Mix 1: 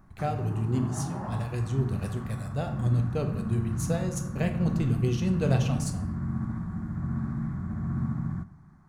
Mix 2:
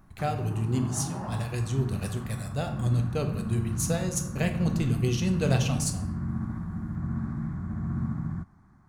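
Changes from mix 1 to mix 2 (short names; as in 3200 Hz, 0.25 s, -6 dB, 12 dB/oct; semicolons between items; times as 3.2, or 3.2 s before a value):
speech: add high shelf 2100 Hz +8 dB; background: send off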